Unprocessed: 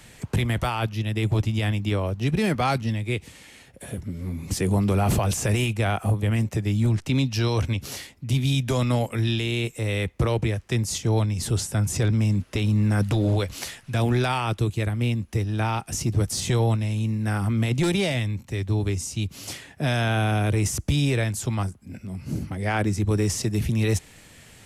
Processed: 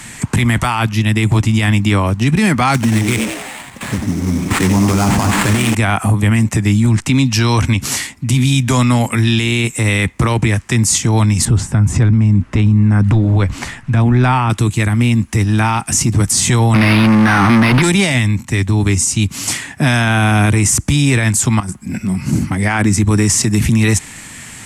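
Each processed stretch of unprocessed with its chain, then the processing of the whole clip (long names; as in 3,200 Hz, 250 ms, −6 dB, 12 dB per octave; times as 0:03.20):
0:02.74–0:05.75: echo with shifted repeats 90 ms, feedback 56%, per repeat +100 Hz, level −8 dB + sample-rate reduction 5,800 Hz, jitter 20%
0:11.45–0:14.50: low-pass filter 1,200 Hz 6 dB per octave + low-shelf EQ 85 Hz +11.5 dB
0:16.74–0:17.82: low-pass with resonance 6,900 Hz, resonance Q 2.1 + mid-hump overdrive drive 35 dB, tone 3,800 Hz, clips at −14 dBFS + linearly interpolated sample-rate reduction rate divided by 6×
0:21.60–0:22.33: compressor whose output falls as the input rises −32 dBFS + comb filter 5.5 ms, depth 32%
whole clip: graphic EQ with 10 bands 125 Hz +3 dB, 250 Hz +8 dB, 500 Hz −6 dB, 1,000 Hz +8 dB, 2,000 Hz +7 dB, 8,000 Hz +12 dB; boost into a limiter +13 dB; level −4 dB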